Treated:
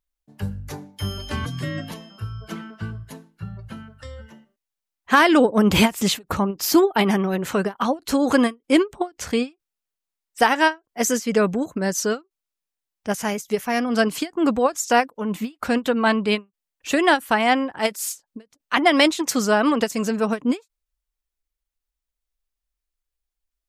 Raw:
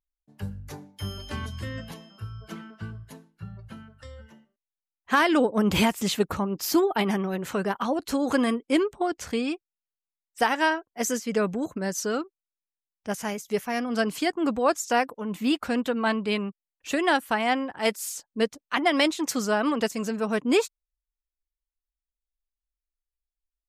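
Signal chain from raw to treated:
0:01.45–0:01.91: frequency shifter +46 Hz
every ending faded ahead of time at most 350 dB per second
level +6 dB

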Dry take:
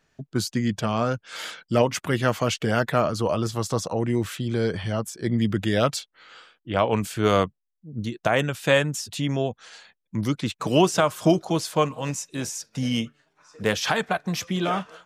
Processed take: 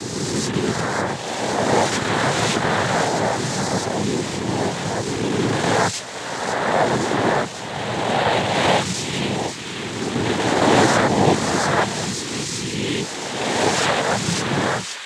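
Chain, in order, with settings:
peak hold with a rise ahead of every peak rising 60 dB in 2.38 s
delay with a high-pass on its return 538 ms, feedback 78%, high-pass 2,200 Hz, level −7 dB
cochlear-implant simulation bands 6

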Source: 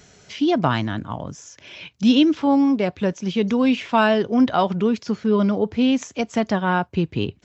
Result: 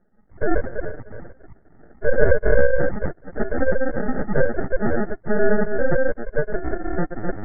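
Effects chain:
delay that plays each chunk backwards 170 ms, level −1 dB
high-pass filter 200 Hz 24 dB per octave, from 0:05.10 49 Hz
spectral peaks only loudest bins 4
flanger swept by the level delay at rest 7.4 ms, full sweep at −16 dBFS
decimation without filtering 42×
full-wave rectification
linear-phase brick-wall low-pass 2,200 Hz
level +3.5 dB

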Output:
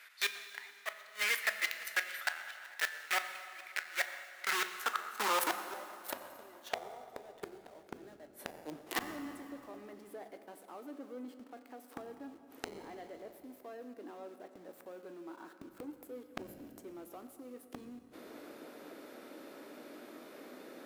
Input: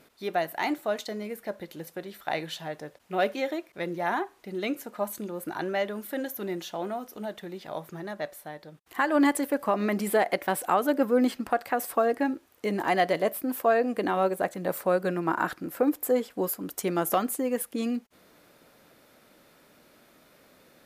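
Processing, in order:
high-shelf EQ 2,800 Hz −5.5 dB
in parallel at −4 dB: log-companded quantiser 2 bits
on the sum: high-pass filter sweep 1,800 Hz → 310 Hz, 0:04.03–0:07.82
gate with flip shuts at −22 dBFS, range −35 dB
on a send at −8 dB: convolution reverb RT60 2.7 s, pre-delay 6 ms
on the sum: saturating transformer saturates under 3,100 Hz
level +5 dB

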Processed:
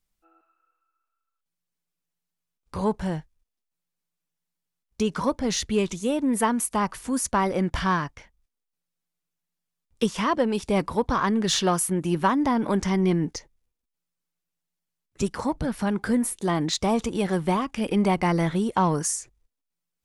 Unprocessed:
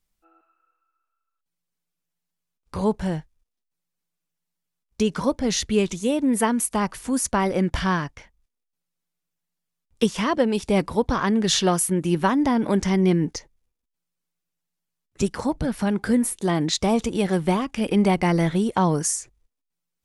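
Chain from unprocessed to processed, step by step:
dynamic equaliser 1,100 Hz, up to +5 dB, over −37 dBFS, Q 1.6
in parallel at −8 dB: soft clipping −18.5 dBFS, distortion −11 dB
on the sum: level −5 dB

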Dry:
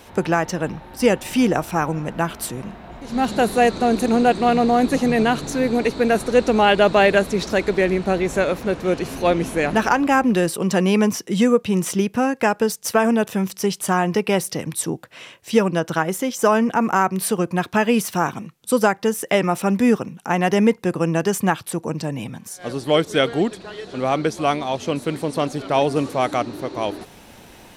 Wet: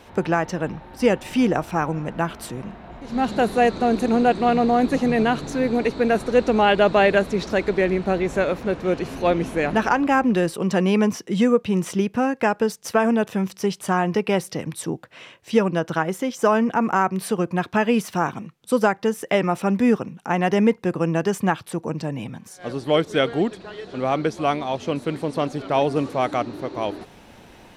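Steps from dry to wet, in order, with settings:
high-shelf EQ 6,200 Hz −11 dB
level −1.5 dB

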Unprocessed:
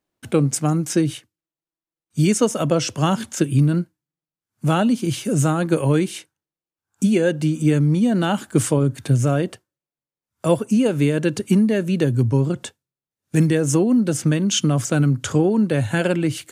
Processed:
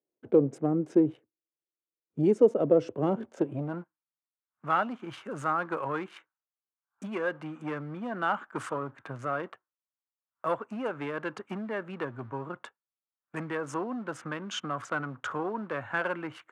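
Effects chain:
adaptive Wiener filter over 9 samples
leveller curve on the samples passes 1
band-pass filter sweep 430 Hz → 1,200 Hz, 0:03.24–0:03.94
level −1.5 dB

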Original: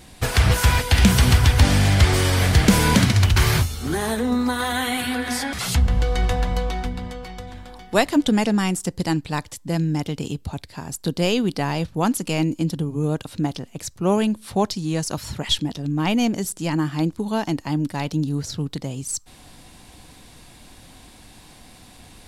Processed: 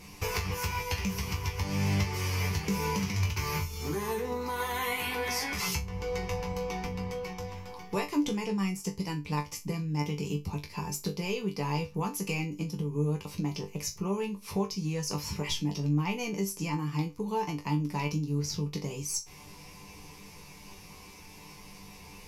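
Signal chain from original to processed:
EQ curve with evenly spaced ripples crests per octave 0.8, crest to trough 12 dB
downward compressor 6 to 1, threshold −25 dBFS, peak gain reduction 18 dB
resonators tuned to a chord G2 fifth, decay 0.21 s
level +6.5 dB

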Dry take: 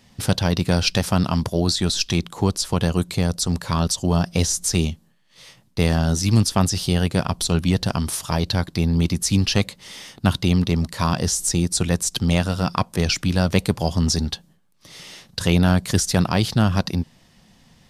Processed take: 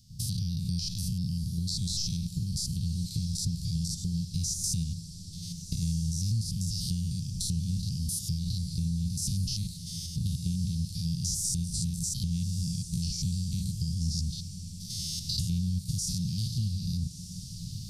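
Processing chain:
spectrum averaged block by block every 100 ms
camcorder AGC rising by 12 dB per second
elliptic band-stop filter 160–4,600 Hz, stop band 70 dB
downward compressor 2.5 to 1, threshold −31 dBFS, peak gain reduction 10.5 dB
feedback delay with all-pass diffusion 1,311 ms, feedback 58%, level −11 dB

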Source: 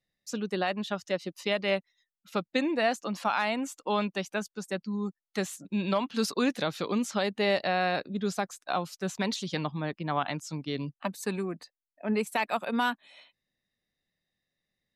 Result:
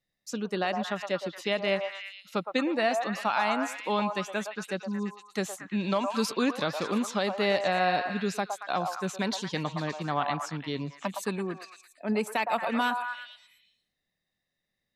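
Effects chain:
echo through a band-pass that steps 114 ms, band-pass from 840 Hz, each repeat 0.7 octaves, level −2 dB

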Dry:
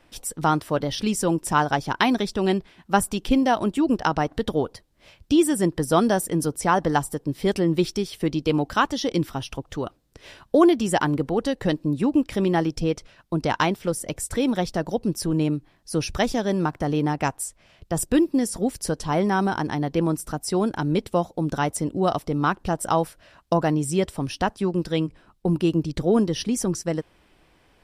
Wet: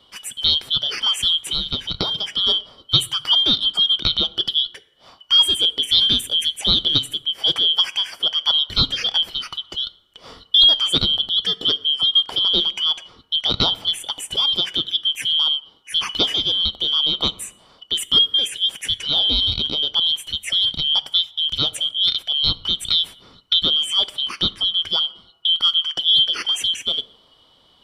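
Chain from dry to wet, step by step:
band-splitting scrambler in four parts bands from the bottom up 2413
high-shelf EQ 4,100 Hz −8.5 dB
0:01.40–0:02.33: downward compressor 2.5 to 1, threshold −28 dBFS, peak gain reduction 7.5 dB
dense smooth reverb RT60 1.1 s, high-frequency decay 0.45×, DRR 16 dB
level +6 dB

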